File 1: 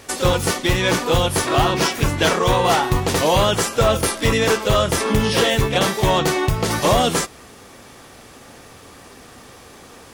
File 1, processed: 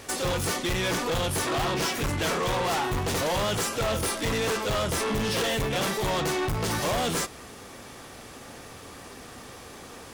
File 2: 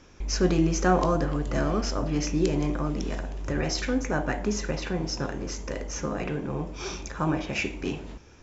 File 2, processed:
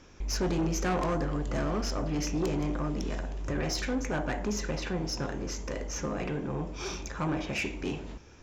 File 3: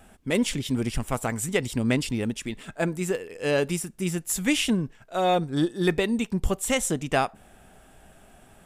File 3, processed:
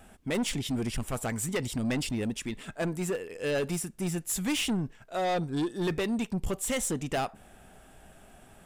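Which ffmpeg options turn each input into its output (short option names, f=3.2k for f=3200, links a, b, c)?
-af "asoftclip=type=tanh:threshold=-23.5dB,volume=-1dB"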